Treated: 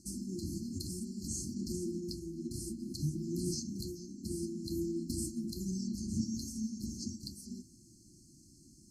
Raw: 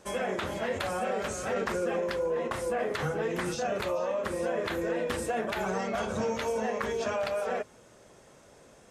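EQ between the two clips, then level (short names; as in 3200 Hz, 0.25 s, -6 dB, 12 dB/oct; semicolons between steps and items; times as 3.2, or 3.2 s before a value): brick-wall FIR band-stop 360–4100 Hz; +1.0 dB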